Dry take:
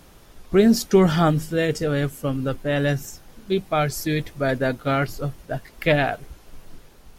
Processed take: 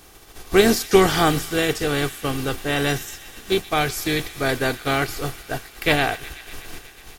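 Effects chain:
compressing power law on the bin magnitudes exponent 0.65
comb filter 2.6 ms, depth 43%
delay with a high-pass on its return 123 ms, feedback 82%, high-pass 1,700 Hz, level −16 dB

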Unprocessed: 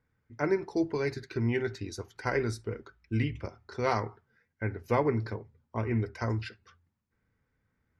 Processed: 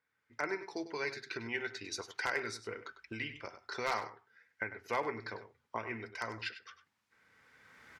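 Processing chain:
camcorder AGC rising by 17 dB per second
resonant band-pass 2,800 Hz, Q 0.54
wave folding −21.5 dBFS
slap from a distant wall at 17 metres, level −12 dB

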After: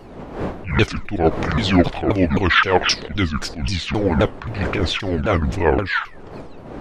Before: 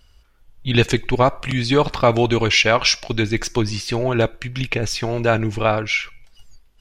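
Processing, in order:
pitch shifter swept by a sawtooth −11 semitones, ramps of 263 ms
wind on the microphone 530 Hz −36 dBFS
level that may rise only so fast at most 120 dB per second
level +3.5 dB

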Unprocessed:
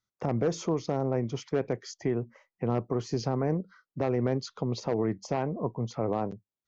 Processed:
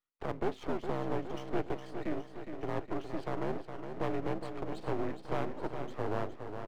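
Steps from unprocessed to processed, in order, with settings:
single-sideband voice off tune −76 Hz 340–3,600 Hz
half-wave rectification
repeating echo 413 ms, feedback 58%, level −8 dB

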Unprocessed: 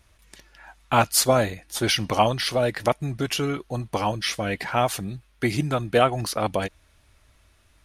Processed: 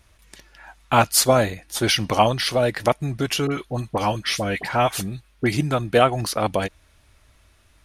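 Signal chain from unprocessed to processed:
0:03.47–0:05.52: all-pass dispersion highs, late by 45 ms, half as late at 1,600 Hz
level +2.5 dB

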